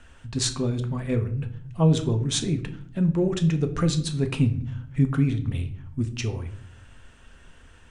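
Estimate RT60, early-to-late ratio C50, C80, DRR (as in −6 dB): 0.55 s, 13.0 dB, 17.0 dB, 6.5 dB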